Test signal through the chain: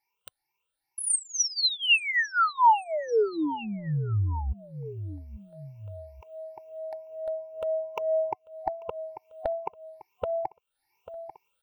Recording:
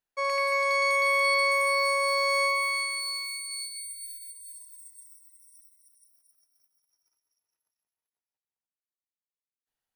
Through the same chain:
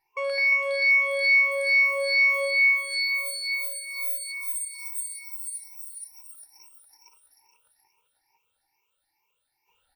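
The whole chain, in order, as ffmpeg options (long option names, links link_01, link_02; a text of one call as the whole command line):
ffmpeg -i in.wav -af "afftfilt=real='re*pow(10,21/40*sin(2*PI*(0.76*log(max(b,1)*sr/1024/100)/log(2)-(2.3)*(pts-256)/sr)))':imag='im*pow(10,21/40*sin(2*PI*(0.76*log(max(b,1)*sr/1024/100)/log(2)-(2.3)*(pts-256)/sr)))':win_size=1024:overlap=0.75,superequalizer=9b=3.16:12b=2.51:15b=0.316,aecho=1:1:842|1684:0.075|0.027,dynaudnorm=framelen=840:gausssize=5:maxgain=9.5dB,equalizer=frequency=12000:width=4.5:gain=-4.5,acompressor=threshold=-39dB:ratio=2,aecho=1:1:2.2:0.61,volume=3.5dB" out.wav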